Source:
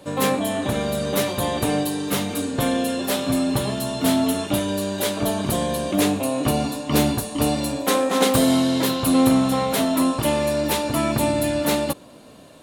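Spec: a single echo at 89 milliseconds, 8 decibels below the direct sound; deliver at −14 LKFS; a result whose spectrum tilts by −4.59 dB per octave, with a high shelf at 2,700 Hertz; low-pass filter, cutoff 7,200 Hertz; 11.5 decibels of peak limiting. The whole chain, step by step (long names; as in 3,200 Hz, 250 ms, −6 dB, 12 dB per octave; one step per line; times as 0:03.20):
low-pass filter 7,200 Hz
high-shelf EQ 2,700 Hz +3 dB
brickwall limiter −17 dBFS
single-tap delay 89 ms −8 dB
level +12 dB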